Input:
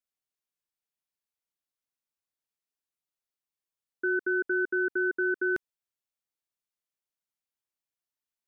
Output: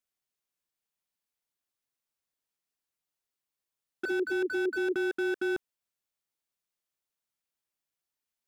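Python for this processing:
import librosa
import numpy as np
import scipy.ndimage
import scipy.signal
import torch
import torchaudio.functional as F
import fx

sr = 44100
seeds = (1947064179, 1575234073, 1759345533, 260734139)

y = fx.dispersion(x, sr, late='lows', ms=98.0, hz=330.0, at=(4.05, 4.96))
y = fx.slew_limit(y, sr, full_power_hz=23.0)
y = y * librosa.db_to_amplitude(2.5)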